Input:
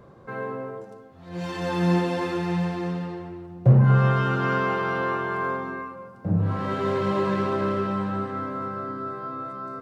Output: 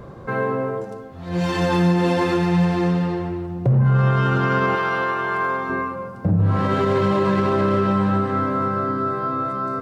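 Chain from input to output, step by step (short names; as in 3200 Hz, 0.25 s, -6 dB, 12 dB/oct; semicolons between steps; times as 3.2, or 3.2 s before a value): low shelf 90 Hz +7.5 dB; in parallel at -1.5 dB: compressor, threshold -29 dBFS, peak gain reduction 19 dB; on the sum: limiter -15 dBFS, peak gain reduction 11.5 dB; 4.75–5.7 low shelf 470 Hz -10 dB; gain +4.5 dB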